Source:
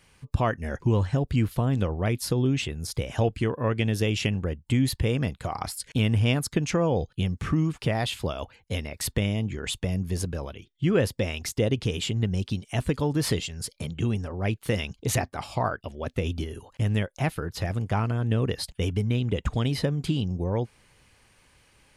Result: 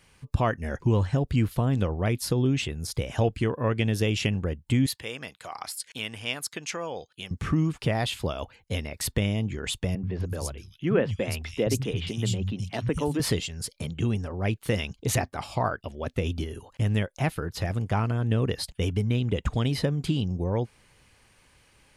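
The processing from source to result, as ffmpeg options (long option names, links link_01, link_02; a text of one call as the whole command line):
ffmpeg -i in.wav -filter_complex "[0:a]asettb=1/sr,asplit=3[link_01][link_02][link_03];[link_01]atrim=end=4.864[link_04];[link_02]atrim=start=4.86:end=7.31,asetpts=PTS-STARTPTS,afade=type=in:duration=0.004:curve=qsin,afade=type=out:start_time=2.446:duration=0.004:curve=qsin,highpass=frequency=1400:poles=1[link_05];[link_03]atrim=start=7.306[link_06];[link_04][link_05]acrossfade=duration=0.004:curve1=hsin:curve2=qsin[link_07];[link_07][link_06]acrossfade=duration=0.004:curve1=qsin:curve2=hsin,asettb=1/sr,asplit=3[link_08][link_09][link_10];[link_08]atrim=end=9.954[link_11];[link_09]atrim=start=9.95:end=13.2,asetpts=PTS-STARTPTS,afade=type=in:duration=0.004:curve=qsin,afade=type=out:start_time=3.246:duration=0.004:curve=qsin,acrossover=split=160|3100[link_12][link_13][link_14];[link_12]adelay=80[link_15];[link_14]adelay=250[link_16];[link_15][link_13][link_16]amix=inputs=3:normalize=0,atrim=end_sample=143325[link_17];[link_10]atrim=start=13.196[link_18];[link_11][link_17]acrossfade=duration=0.004:curve1=hsin:curve2=qsin[link_19];[link_19][link_18]acrossfade=duration=0.004:curve1=qsin:curve2=hsin" out.wav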